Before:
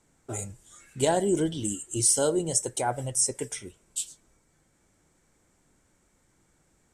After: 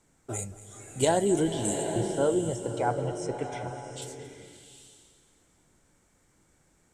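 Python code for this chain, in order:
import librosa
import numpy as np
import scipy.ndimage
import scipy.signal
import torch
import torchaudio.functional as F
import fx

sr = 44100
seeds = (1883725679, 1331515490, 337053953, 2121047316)

y = fx.lowpass(x, sr, hz=fx.line((1.85, 1500.0), (4.01, 3500.0)), slope=12, at=(1.85, 4.01), fade=0.02)
y = fx.echo_feedback(y, sr, ms=227, feedback_pct=55, wet_db=-17.0)
y = fx.rev_bloom(y, sr, seeds[0], attack_ms=800, drr_db=6.0)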